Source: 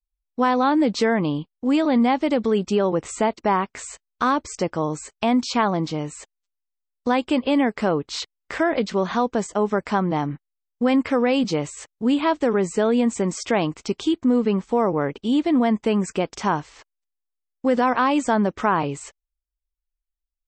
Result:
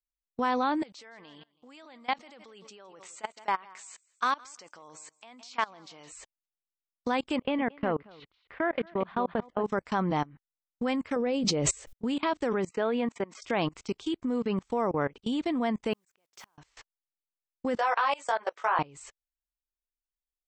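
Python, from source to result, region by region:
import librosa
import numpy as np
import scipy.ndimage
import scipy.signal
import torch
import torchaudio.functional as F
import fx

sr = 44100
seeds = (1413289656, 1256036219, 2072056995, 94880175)

y = fx.chain(x, sr, fx.highpass(hz=1200.0, slope=6),
    fx.echo_feedback(ms=163, feedback_pct=27, wet_db=-18), at=(0.82, 6.12))
y = fx.chain(y, sr, fx.lowpass(hz=3100.0, slope=24),
    fx.level_steps(step_db=11),
    fx.echo_single(ms=227, db=-9.5), at=(7.36, 9.64))
y = fx.chain(y, sr, fx.low_shelf_res(hz=730.0, db=6.5, q=1.5),
    fx.sustainer(db_per_s=76.0), at=(11.16, 11.93))
y = fx.chain(y, sr, fx.bandpass_edges(low_hz=160.0, high_hz=2900.0),
    fx.low_shelf(hz=220.0, db=-7.5), at=(12.69, 13.42))
y = fx.chain(y, sr, fx.highpass(hz=430.0, slope=6),
    fx.mod_noise(seeds[0], snr_db=13),
    fx.gate_flip(shuts_db=-22.0, range_db=-37), at=(15.93, 16.58))
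y = fx.chain(y, sr, fx.highpass(hz=520.0, slope=24),
    fx.doubler(ms=18.0, db=-2.5), at=(17.77, 18.79))
y = fx.level_steps(y, sr, step_db=24)
y = fx.peak_eq(y, sr, hz=280.0, db=-4.5, octaves=2.7)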